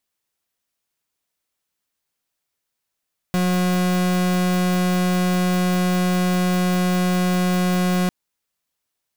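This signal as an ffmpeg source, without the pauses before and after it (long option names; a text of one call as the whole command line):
ffmpeg -f lavfi -i "aevalsrc='0.112*(2*lt(mod(181*t,1),0.41)-1)':duration=4.75:sample_rate=44100" out.wav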